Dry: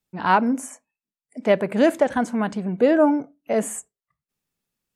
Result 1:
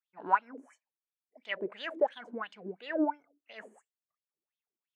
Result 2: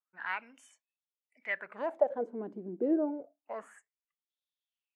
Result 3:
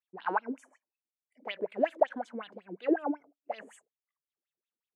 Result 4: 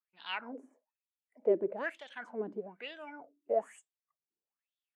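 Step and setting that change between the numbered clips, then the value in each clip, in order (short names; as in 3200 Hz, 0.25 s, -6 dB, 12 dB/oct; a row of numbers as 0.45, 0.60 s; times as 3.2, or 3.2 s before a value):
wah, rate: 2.9, 0.28, 5.4, 1.1 Hz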